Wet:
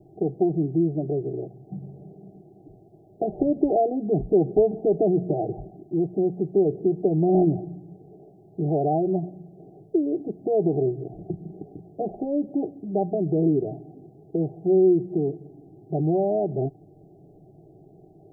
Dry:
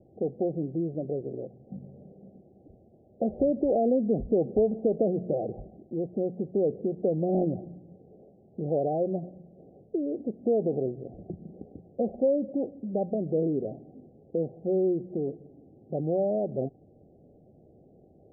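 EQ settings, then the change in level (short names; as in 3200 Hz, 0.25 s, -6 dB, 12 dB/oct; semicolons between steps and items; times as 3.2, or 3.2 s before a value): fixed phaser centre 350 Hz, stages 8; +8.5 dB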